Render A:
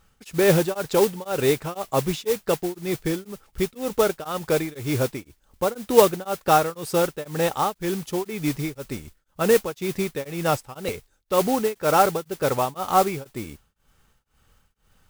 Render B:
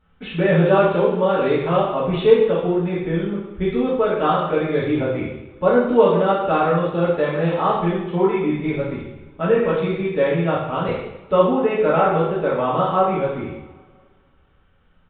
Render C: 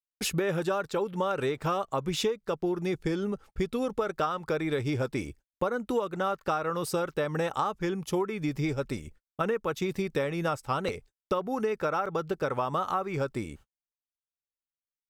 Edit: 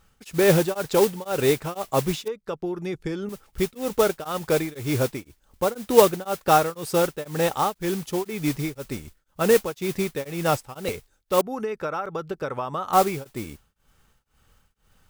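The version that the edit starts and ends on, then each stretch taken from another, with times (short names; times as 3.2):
A
2.28–3.29 from C
11.41–12.93 from C
not used: B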